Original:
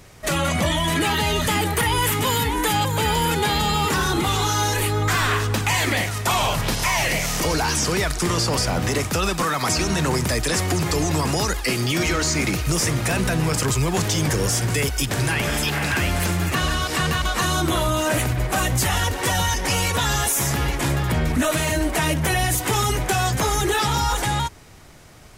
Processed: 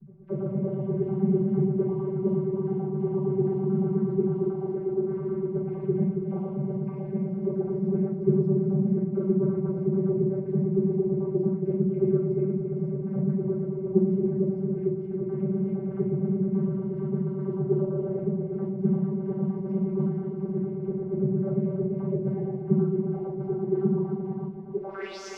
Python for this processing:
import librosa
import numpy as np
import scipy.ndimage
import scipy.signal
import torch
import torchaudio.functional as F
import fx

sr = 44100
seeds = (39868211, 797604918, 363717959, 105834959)

y = fx.filter_lfo_highpass(x, sr, shape='sine', hz=8.8, low_hz=350.0, high_hz=5200.0, q=3.9)
y = fx.wow_flutter(y, sr, seeds[0], rate_hz=2.1, depth_cents=42.0)
y = fx.vocoder(y, sr, bands=16, carrier='saw', carrier_hz=193.0)
y = fx.quant_dither(y, sr, seeds[1], bits=10, dither='triangular')
y = fx.filter_sweep_lowpass(y, sr, from_hz=150.0, to_hz=6300.0, start_s=24.6, end_s=25.2, q=6.1)
y = y + 10.0 ** (-7.5 / 20.0) * np.pad(y, (int(276 * sr / 1000.0), 0))[:len(y)]
y = fx.room_shoebox(y, sr, seeds[2], volume_m3=33.0, walls='mixed', distance_m=1.1)
y = y * librosa.db_to_amplitude(-1.5)